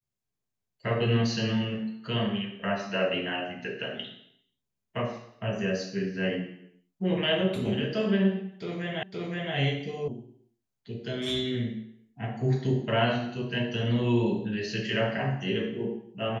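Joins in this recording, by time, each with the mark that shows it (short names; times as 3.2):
9.03 repeat of the last 0.52 s
10.08 sound cut off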